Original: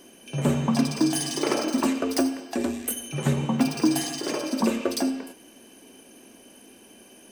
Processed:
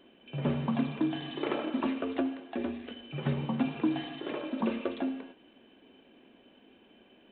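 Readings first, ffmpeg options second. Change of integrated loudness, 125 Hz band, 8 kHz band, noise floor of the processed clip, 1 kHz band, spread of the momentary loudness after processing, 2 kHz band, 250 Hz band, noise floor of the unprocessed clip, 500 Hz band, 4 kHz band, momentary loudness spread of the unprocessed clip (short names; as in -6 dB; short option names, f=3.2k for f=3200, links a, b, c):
-7.5 dB, -7.0 dB, under -40 dB, -61 dBFS, -7.0 dB, 7 LU, -7.0 dB, -7.0 dB, -52 dBFS, -7.0 dB, -11.0 dB, 6 LU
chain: -af "volume=-7dB" -ar 8000 -c:a adpcm_g726 -b:a 32k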